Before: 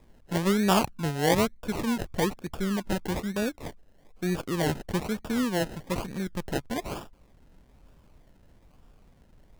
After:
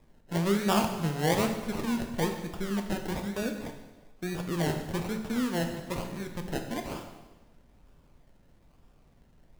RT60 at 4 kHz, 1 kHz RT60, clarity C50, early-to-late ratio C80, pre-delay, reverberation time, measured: 1.1 s, 1.2 s, 7.0 dB, 9.0 dB, 5 ms, 1.2 s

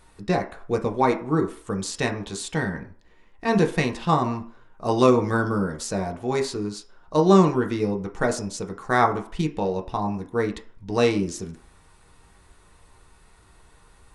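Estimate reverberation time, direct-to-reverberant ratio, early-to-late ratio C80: 0.50 s, 1.5 dB, 16.5 dB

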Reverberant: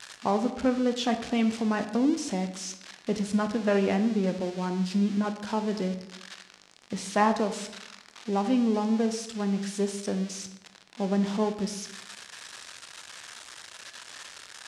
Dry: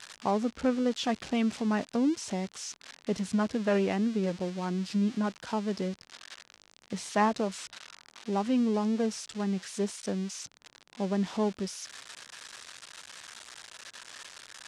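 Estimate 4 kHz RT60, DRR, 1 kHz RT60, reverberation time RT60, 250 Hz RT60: 0.60 s, 7.5 dB, 0.85 s, 0.85 s, 1.0 s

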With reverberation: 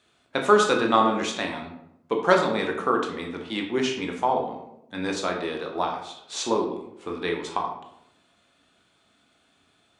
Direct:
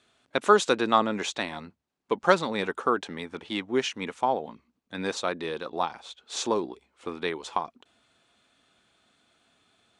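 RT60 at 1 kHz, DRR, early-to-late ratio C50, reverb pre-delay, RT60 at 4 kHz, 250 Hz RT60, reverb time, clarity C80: 0.75 s, 1.5 dB, 6.0 dB, 14 ms, 0.45 s, 0.95 s, 0.80 s, 9.0 dB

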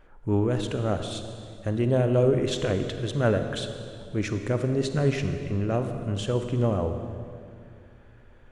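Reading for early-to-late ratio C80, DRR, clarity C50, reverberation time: 8.5 dB, 7.0 dB, 7.5 dB, 2.4 s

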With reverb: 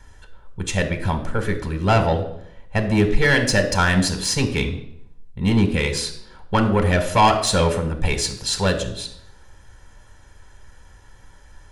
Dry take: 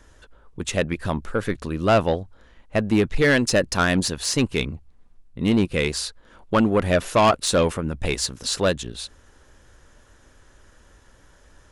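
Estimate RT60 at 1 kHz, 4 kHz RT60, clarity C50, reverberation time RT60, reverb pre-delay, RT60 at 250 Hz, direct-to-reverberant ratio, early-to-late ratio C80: 0.70 s, 0.55 s, 10.0 dB, 0.70 s, 5 ms, 0.75 s, 7.0 dB, 13.0 dB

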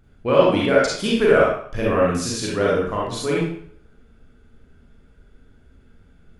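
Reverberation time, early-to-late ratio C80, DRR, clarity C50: 0.60 s, 4.0 dB, -5.5 dB, -1.0 dB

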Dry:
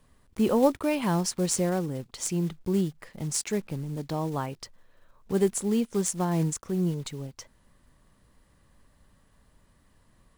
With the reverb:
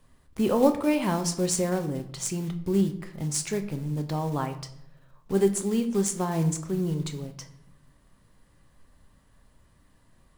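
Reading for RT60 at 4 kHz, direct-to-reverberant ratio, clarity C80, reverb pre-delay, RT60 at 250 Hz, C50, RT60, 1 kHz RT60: 0.50 s, 6.5 dB, 15.0 dB, 8 ms, 1.0 s, 12.0 dB, 0.75 s, 0.70 s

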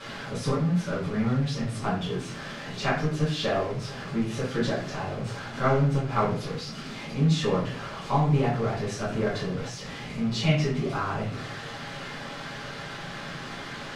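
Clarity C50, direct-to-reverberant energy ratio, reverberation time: 4.5 dB, -8.0 dB, 0.50 s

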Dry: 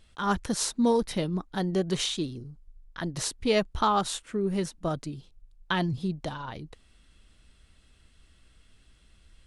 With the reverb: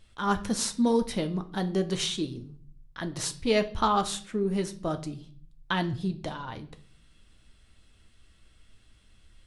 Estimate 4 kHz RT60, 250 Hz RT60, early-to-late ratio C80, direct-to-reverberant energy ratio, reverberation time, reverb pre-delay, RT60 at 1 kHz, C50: 0.40 s, 0.75 s, 19.5 dB, 7.5 dB, 0.50 s, 9 ms, 0.45 s, 15.5 dB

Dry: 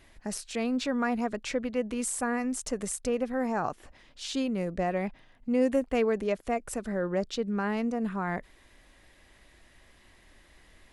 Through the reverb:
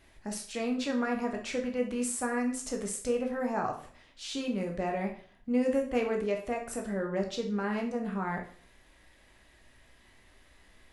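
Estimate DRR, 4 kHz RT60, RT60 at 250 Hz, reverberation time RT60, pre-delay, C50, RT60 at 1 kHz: 1.0 dB, 0.45 s, 0.45 s, 0.50 s, 10 ms, 8.5 dB, 0.45 s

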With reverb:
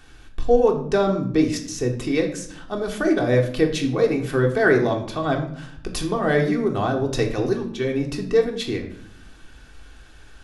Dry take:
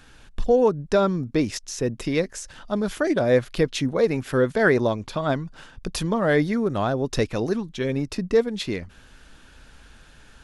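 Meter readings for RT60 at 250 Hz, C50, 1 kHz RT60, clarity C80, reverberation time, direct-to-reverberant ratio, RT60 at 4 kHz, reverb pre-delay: 1.1 s, 9.0 dB, 0.55 s, 12.0 dB, 0.65 s, 1.0 dB, 0.45 s, 3 ms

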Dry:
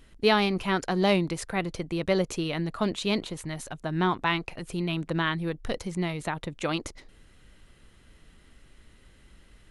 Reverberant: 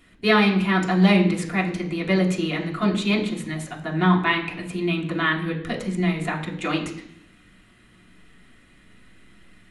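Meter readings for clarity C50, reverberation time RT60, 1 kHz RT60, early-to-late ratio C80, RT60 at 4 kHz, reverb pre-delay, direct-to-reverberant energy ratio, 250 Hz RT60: 9.5 dB, 0.70 s, 0.75 s, 12.0 dB, 1.0 s, 3 ms, -3.0 dB, 0.90 s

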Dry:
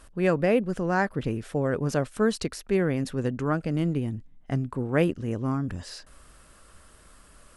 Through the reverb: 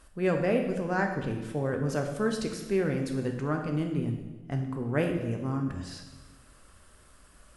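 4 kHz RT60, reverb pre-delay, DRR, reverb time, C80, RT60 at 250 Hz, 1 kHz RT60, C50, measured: 1.1 s, 6 ms, 3.0 dB, 1.2 s, 8.0 dB, 1.6 s, 1.1 s, 6.0 dB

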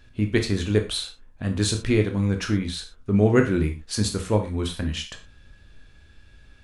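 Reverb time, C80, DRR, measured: no single decay rate, 16.0 dB, 4.5 dB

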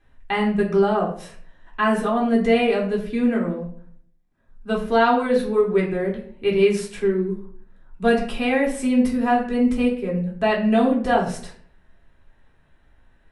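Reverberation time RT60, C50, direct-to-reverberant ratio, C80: 0.55 s, 8.5 dB, -4.0 dB, 11.5 dB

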